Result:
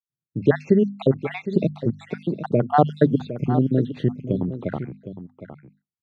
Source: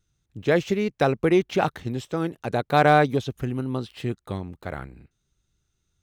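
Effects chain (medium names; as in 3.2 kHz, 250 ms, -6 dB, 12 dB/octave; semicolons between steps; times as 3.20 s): random holes in the spectrogram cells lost 65%; hum notches 50/100/150/200/250 Hz; expander -54 dBFS; high-pass 130 Hz 24 dB/octave; bass shelf 390 Hz +11 dB; in parallel at +0.5 dB: compression, threshold -30 dBFS, peak gain reduction 18.5 dB; on the sum: tape spacing loss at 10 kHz 24 dB; delay 761 ms -12 dB; trim +1 dB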